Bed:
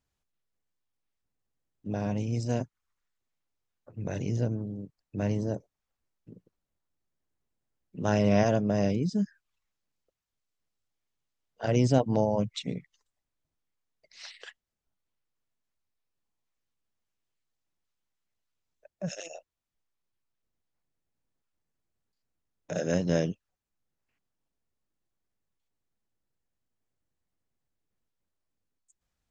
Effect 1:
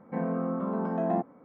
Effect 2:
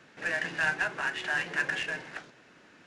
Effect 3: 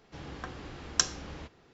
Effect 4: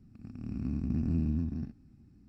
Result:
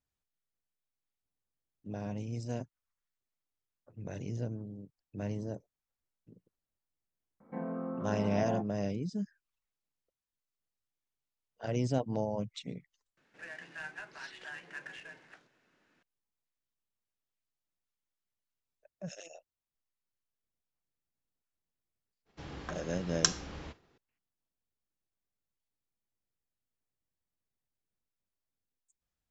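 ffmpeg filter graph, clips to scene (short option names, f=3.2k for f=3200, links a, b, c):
-filter_complex "[0:a]volume=-8dB[a];[1:a]asplit=2[b][c];[c]adelay=15,volume=-14dB[d];[b][d]amix=inputs=2:normalize=0[e];[3:a]agate=range=-33dB:threshold=-56dB:ratio=3:release=100:detection=peak[f];[e]atrim=end=1.44,asetpts=PTS-STARTPTS,volume=-8dB,afade=t=in:d=0.004:c=hsin,afade=t=out:st=1.436:d=0.004:c=hsin,adelay=7400[g];[2:a]atrim=end=2.86,asetpts=PTS-STARTPTS,volume=-15.5dB,afade=t=in:d=0.004:c=hsin,afade=t=out:st=2.856:d=0.004:c=hsin,adelay=13170[h];[f]atrim=end=1.73,asetpts=PTS-STARTPTS,volume=-1.5dB,afade=t=in:d=0.004:c=hsin,afade=t=out:st=1.726:d=0.004:c=hsin,adelay=22250[i];[a][g][h][i]amix=inputs=4:normalize=0"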